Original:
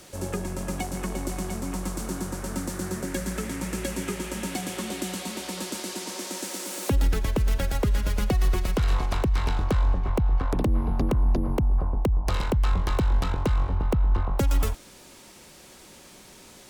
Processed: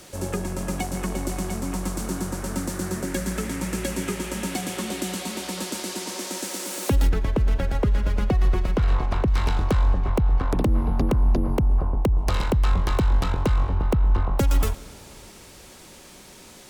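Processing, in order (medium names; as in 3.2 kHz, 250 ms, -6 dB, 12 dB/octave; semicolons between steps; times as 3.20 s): 7.09–9.28 s: low-pass 1.9 kHz 6 dB/octave; reverberation RT60 3.9 s, pre-delay 100 ms, DRR 19.5 dB; trim +2.5 dB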